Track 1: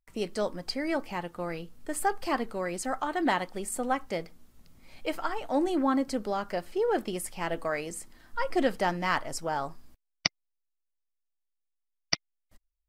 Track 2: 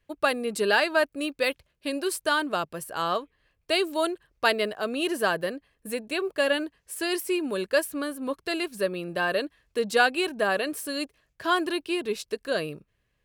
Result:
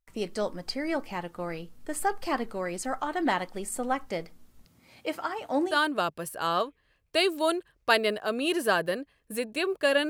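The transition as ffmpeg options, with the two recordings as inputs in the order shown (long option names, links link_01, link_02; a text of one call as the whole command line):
ffmpeg -i cue0.wav -i cue1.wav -filter_complex "[0:a]asettb=1/sr,asplit=3[link_01][link_02][link_03];[link_01]atrim=end=4.654[link_04];[link_02]atrim=start=4.65:end=5.78,asetpts=PTS-STARTPTS,afade=type=in:duration=0.004:curve=qsin,afade=type=out:start_time=1.126:duration=0.004:curve=qsin,highpass=frequency=81:width=0.5412,highpass=frequency=81:width=1.3066[link_05];[link_03]atrim=start=5.776[link_06];[link_04][link_05]acrossfade=duration=0.004:curve1=hsin:curve2=qsin[link_07];[link_07][link_06]acrossfade=duration=0.004:curve1=qsin:curve2=hsin,apad=whole_dur=10.09,atrim=end=10.09,atrim=end=5.78,asetpts=PTS-STARTPTS[link_08];[1:a]atrim=start=2.19:end=6.64,asetpts=PTS-STARTPTS[link_09];[link_08][link_09]acrossfade=duration=0.14:curve1=tri:curve2=tri" out.wav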